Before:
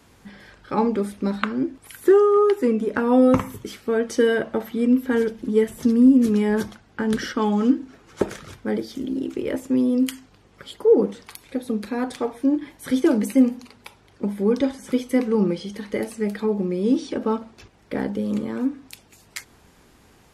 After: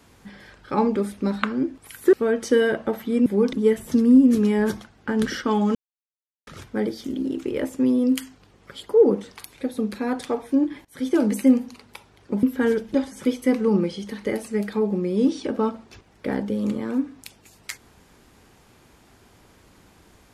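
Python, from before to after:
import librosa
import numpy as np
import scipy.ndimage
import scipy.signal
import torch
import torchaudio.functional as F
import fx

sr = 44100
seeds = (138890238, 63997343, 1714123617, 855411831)

y = fx.edit(x, sr, fx.cut(start_s=2.13, length_s=1.67),
    fx.swap(start_s=4.93, length_s=0.51, other_s=14.34, other_length_s=0.27),
    fx.silence(start_s=7.66, length_s=0.72),
    fx.fade_in_from(start_s=12.76, length_s=0.4, floor_db=-20.5), tone=tone)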